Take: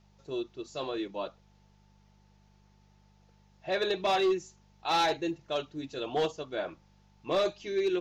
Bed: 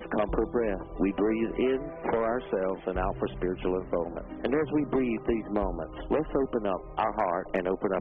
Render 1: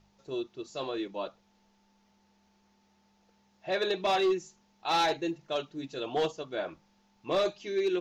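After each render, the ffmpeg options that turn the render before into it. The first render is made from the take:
-af "bandreject=f=50:t=h:w=4,bandreject=f=100:t=h:w=4,bandreject=f=150:t=h:w=4"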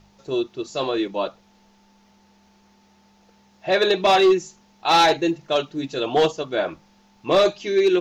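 -af "volume=3.55"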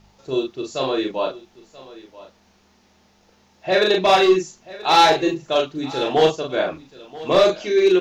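-filter_complex "[0:a]asplit=2[s0][s1];[s1]adelay=38,volume=0.708[s2];[s0][s2]amix=inputs=2:normalize=0,aecho=1:1:983:0.112"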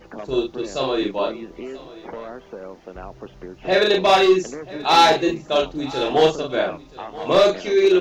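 -filter_complex "[1:a]volume=0.447[s0];[0:a][s0]amix=inputs=2:normalize=0"

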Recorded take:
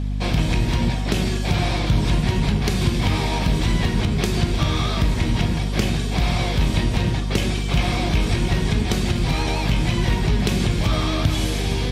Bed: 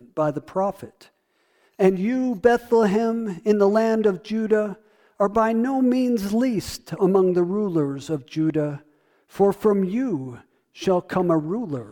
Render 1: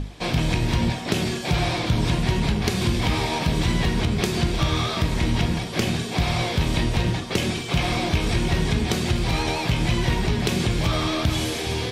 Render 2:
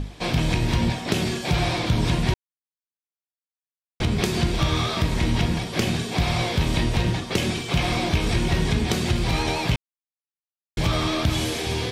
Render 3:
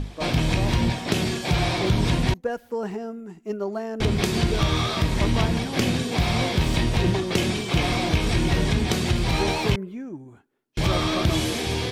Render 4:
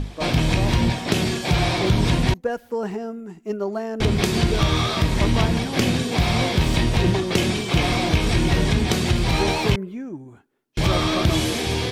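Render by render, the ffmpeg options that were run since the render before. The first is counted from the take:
-af "bandreject=f=50:t=h:w=6,bandreject=f=100:t=h:w=6,bandreject=f=150:t=h:w=6,bandreject=f=200:t=h:w=6,bandreject=f=250:t=h:w=6"
-filter_complex "[0:a]asplit=5[s0][s1][s2][s3][s4];[s0]atrim=end=2.34,asetpts=PTS-STARTPTS,afade=t=out:st=2.336:d=0.004:c=hsin[s5];[s1]atrim=start=2.34:end=4,asetpts=PTS-STARTPTS,volume=0[s6];[s2]atrim=start=4:end=9.76,asetpts=PTS-STARTPTS,afade=t=in:d=0.004:c=hsin,afade=t=out:st=5.756:d=0.004:c=hsin[s7];[s3]atrim=start=9.76:end=10.77,asetpts=PTS-STARTPTS,volume=0[s8];[s4]atrim=start=10.77,asetpts=PTS-STARTPTS,afade=t=in:d=0.004:c=hsin[s9];[s5][s6][s7][s8][s9]concat=n=5:v=0:a=1"
-filter_complex "[1:a]volume=0.282[s0];[0:a][s0]amix=inputs=2:normalize=0"
-af "volume=1.33"

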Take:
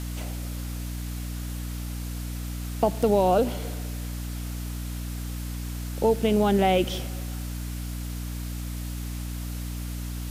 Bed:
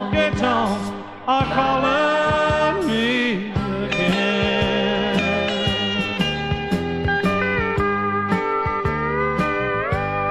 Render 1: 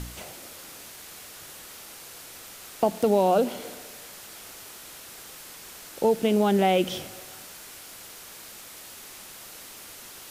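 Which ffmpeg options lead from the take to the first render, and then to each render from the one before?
-af "bandreject=f=60:t=h:w=4,bandreject=f=120:t=h:w=4,bandreject=f=180:t=h:w=4,bandreject=f=240:t=h:w=4,bandreject=f=300:t=h:w=4"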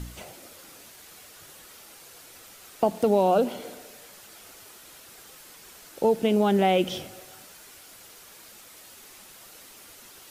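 -af "afftdn=nr=6:nf=-45"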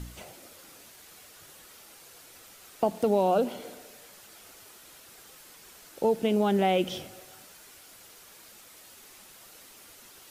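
-af "volume=0.708"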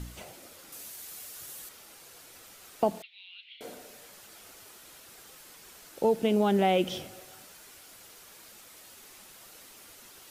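-filter_complex "[0:a]asettb=1/sr,asplit=3[s0][s1][s2];[s0]atrim=end=0.724[s3];[s1]atrim=start=0.72:end=1.69,asetpts=PTS-STARTPTS,afade=t=in:d=0.004:c=qsin,afade=t=out:st=0.966:d=0.004:c=qsin,highshelf=f=5600:g=11.5[s4];[s2]atrim=start=1.686[s5];[s3][s4]acrossfade=d=0.004:c1=hsin:c2=qsin[s6];[s6][s5]acrossfade=d=0.004:c1=qsin:c2=hsin,asettb=1/sr,asplit=3[s7][s8][s9];[s7]atrim=end=3.024[s10];[s8]atrim=start=3.02:end=3.61,asetpts=PTS-STARTPTS,afade=t=in:d=0.004:c=qsin,afade=t=out:st=0.586:d=0.004:c=qsin,asuperpass=centerf=2900:order=8:qfactor=1.6[s11];[s9]atrim=start=3.606[s12];[s10][s11]acrossfade=d=0.004:c1=hsin:c2=qsin[s13];[s13][s12]acrossfade=d=0.004:c1=qsin:c2=hsin"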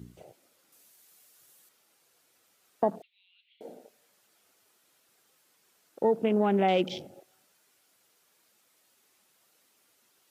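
-af "afwtdn=0.01,highpass=130"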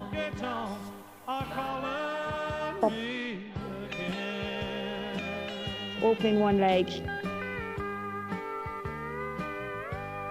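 -filter_complex "[1:a]volume=0.178[s0];[0:a][s0]amix=inputs=2:normalize=0"

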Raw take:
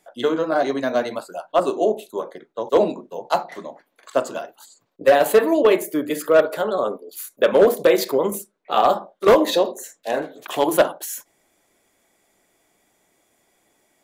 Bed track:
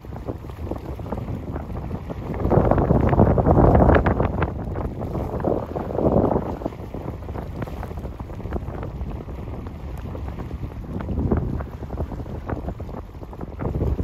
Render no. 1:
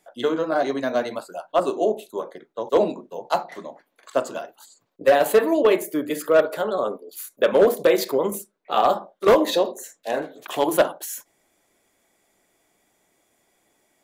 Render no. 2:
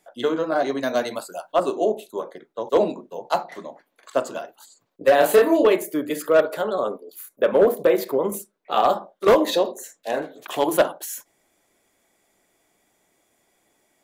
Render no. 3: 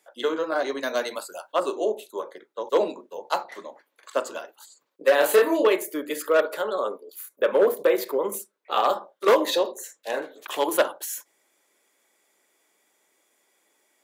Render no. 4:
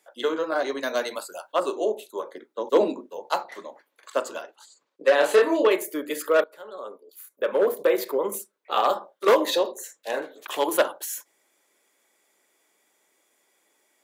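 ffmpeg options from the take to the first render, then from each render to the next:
-af "volume=0.794"
-filter_complex "[0:a]asettb=1/sr,asplit=3[s0][s1][s2];[s0]atrim=end=0.834[s3];[s1]atrim=start=0.83:end=1.54,asetpts=PTS-STARTPTS,afade=t=in:d=0.004:c=qsin,afade=t=out:st=0.706:d=0.004:c=qsin,highshelf=f=4400:g=10[s4];[s2]atrim=start=1.536[s5];[s3][s4]acrossfade=d=0.004:c1=hsin:c2=qsin[s6];[s6][s5]acrossfade=d=0.004:c1=qsin:c2=hsin,asettb=1/sr,asplit=3[s7][s8][s9];[s7]atrim=end=5.154[s10];[s8]atrim=start=5.15:end=5.68,asetpts=PTS-STARTPTS,afade=t=in:d=0.004:c=qsin,afade=t=out:st=0.526:d=0.004:c=qsin,asplit=2[s11][s12];[s12]adelay=30,volume=0.794[s13];[s11][s13]amix=inputs=2:normalize=0,atrim=end_sample=23373[s14];[s9]atrim=start=5.676[s15];[s10][s14]acrossfade=d=0.004:c1=hsin:c2=qsin[s16];[s16][s15]acrossfade=d=0.004:c1=qsin:c2=hsin,asettb=1/sr,asplit=3[s17][s18][s19];[s17]atrim=end=7.124[s20];[s18]atrim=start=7.12:end=8.3,asetpts=PTS-STARTPTS,afade=t=in:d=0.004:c=qsin,afade=t=out:st=1.176:d=0.004:c=qsin,equalizer=f=5500:w=0.53:g=-9.5[s21];[s19]atrim=start=8.296[s22];[s20][s21]acrossfade=d=0.004:c1=hsin:c2=qsin[s23];[s23][s22]acrossfade=d=0.004:c1=qsin:c2=hsin"
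-af "highpass=400,equalizer=f=700:w=4.9:g=-8"
-filter_complex "[0:a]asettb=1/sr,asplit=3[s0][s1][s2];[s0]atrim=end=2.334[s3];[s1]atrim=start=2.33:end=3.12,asetpts=PTS-STARTPTS,afade=t=in:d=0.004:c=qsin,afade=t=out:st=0.786:d=0.004:c=qsin,equalizer=f=260:w=1.6:g=9.5[s4];[s2]atrim=start=3.116[s5];[s3][s4]acrossfade=d=0.004:c1=hsin:c2=qsin[s6];[s6][s5]acrossfade=d=0.004:c1=qsin:c2=hsin,asettb=1/sr,asplit=3[s7][s8][s9];[s7]atrim=end=4.424[s10];[s8]atrim=start=4.42:end=5.71,asetpts=PTS-STARTPTS,afade=t=in:d=0.004:c=qsin,afade=t=out:st=1.286:d=0.004:c=qsin,highpass=110,lowpass=7700[s11];[s9]atrim=start=5.706[s12];[s10][s11]acrossfade=d=0.004:c1=hsin:c2=qsin[s13];[s13][s12]acrossfade=d=0.004:c1=qsin:c2=hsin,asplit=2[s14][s15];[s14]atrim=end=6.44,asetpts=PTS-STARTPTS,afade=t=out:st=6.436:d=0.004:c=hsin:silence=0.0794328[s16];[s15]atrim=start=6.44,asetpts=PTS-STARTPTS,afade=t=in:d=1.56:silence=0.0794328[s17];[s16][s17]concat=n=2:v=0:a=1"

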